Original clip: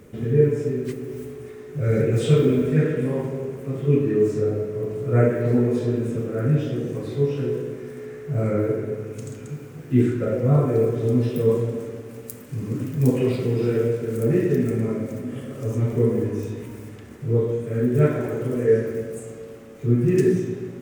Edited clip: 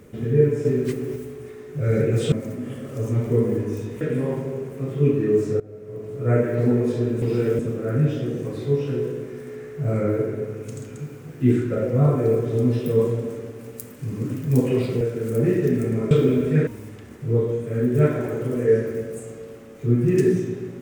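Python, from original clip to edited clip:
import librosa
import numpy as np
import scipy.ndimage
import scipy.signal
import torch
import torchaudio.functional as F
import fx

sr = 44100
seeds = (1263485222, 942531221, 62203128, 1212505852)

y = fx.edit(x, sr, fx.clip_gain(start_s=0.65, length_s=0.51, db=4.0),
    fx.swap(start_s=2.32, length_s=0.56, other_s=14.98, other_length_s=1.69),
    fx.fade_in_from(start_s=4.47, length_s=0.91, floor_db=-22.0),
    fx.move(start_s=13.51, length_s=0.37, to_s=6.09), tone=tone)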